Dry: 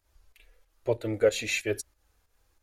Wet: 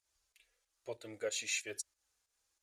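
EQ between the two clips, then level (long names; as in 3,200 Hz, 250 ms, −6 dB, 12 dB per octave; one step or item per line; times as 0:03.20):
resonant band-pass 7,600 Hz, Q 1.3
spectral tilt −3 dB per octave
+7.5 dB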